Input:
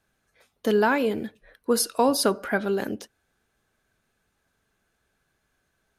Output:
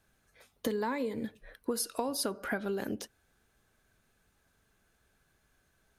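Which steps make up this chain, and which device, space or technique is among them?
0.67–1.25 s: rippled EQ curve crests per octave 1, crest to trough 11 dB; ASMR close-microphone chain (bass shelf 110 Hz +5.5 dB; compression 10:1, threshold -30 dBFS, peak gain reduction 15 dB; treble shelf 7.7 kHz +4 dB)

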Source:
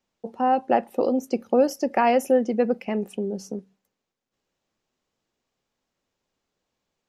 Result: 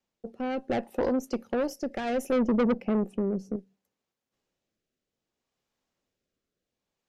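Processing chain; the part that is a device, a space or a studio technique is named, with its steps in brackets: 2.32–3.56 s: tilt shelf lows +8.5 dB, about 910 Hz; overdriven rotary cabinet (valve stage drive 20 dB, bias 0.5; rotary cabinet horn 0.65 Hz)

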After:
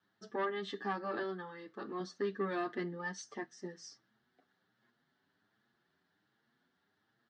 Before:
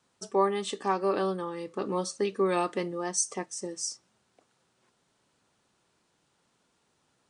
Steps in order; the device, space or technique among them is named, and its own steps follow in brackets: 1.22–2.00 s: bass shelf 350 Hz -8 dB; barber-pole flanger into a guitar amplifier (endless flanger 7.4 ms +1.3 Hz; saturation -24 dBFS, distortion -15 dB; cabinet simulation 96–4300 Hz, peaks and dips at 240 Hz +4 dB, 530 Hz -8 dB, 1 kHz -5 dB, 1.7 kHz +10 dB, 2.5 kHz -10 dB); trim -2.5 dB

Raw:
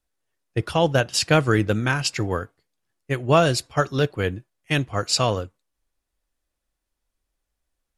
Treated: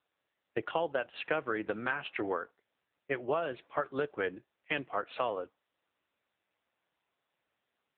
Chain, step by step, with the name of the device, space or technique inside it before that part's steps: voicemail (band-pass 390–2700 Hz; compression 6:1, threshold -28 dBFS, peak gain reduction 14.5 dB; AMR-NB 6.7 kbps 8 kHz)

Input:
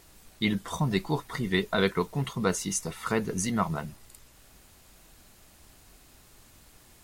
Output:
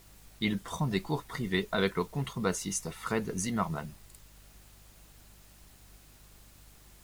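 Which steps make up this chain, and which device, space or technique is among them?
video cassette with head-switching buzz (mains buzz 50 Hz, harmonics 4, -55 dBFS -8 dB/octave; white noise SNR 29 dB); trim -3.5 dB

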